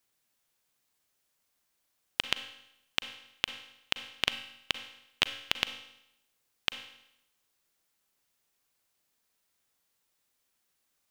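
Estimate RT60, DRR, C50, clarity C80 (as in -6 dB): 0.80 s, 10.0 dB, 11.0 dB, 13.0 dB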